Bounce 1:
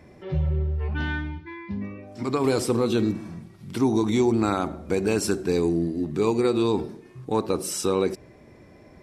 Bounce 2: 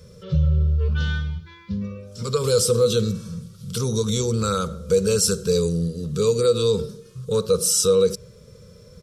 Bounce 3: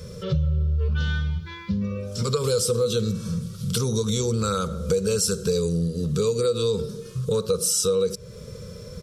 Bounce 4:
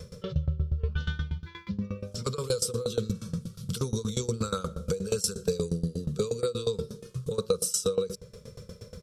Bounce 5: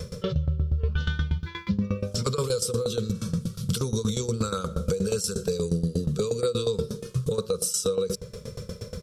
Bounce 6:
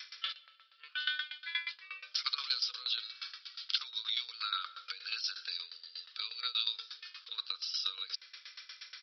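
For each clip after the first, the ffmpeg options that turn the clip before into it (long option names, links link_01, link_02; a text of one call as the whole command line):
ffmpeg -i in.wav -filter_complex "[0:a]firequalizer=gain_entry='entry(190,0);entry(300,-29);entry(480,7);entry(710,-27);entry(1300,-1);entry(1900,-18);entry(3200,1);entry(5800,7);entry(12000,5)':delay=0.05:min_phase=1,asplit=2[link_01][link_02];[link_02]alimiter=limit=-19.5dB:level=0:latency=1:release=17,volume=1dB[link_03];[link_01][link_03]amix=inputs=2:normalize=0" out.wav
ffmpeg -i in.wav -af "acompressor=threshold=-32dB:ratio=3,volume=8dB" out.wav
ffmpeg -i in.wav -af "aeval=exprs='val(0)*pow(10,-20*if(lt(mod(8.4*n/s,1),2*abs(8.4)/1000),1-mod(8.4*n/s,1)/(2*abs(8.4)/1000),(mod(8.4*n/s,1)-2*abs(8.4)/1000)/(1-2*abs(8.4)/1000))/20)':channel_layout=same" out.wav
ffmpeg -i in.wav -af "alimiter=limit=-23.5dB:level=0:latency=1:release=111,volume=8dB" out.wav
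ffmpeg -i in.wav -af "asuperpass=centerf=3900:order=8:qfactor=0.56,aresample=11025,aresample=44100,volume=4.5dB" out.wav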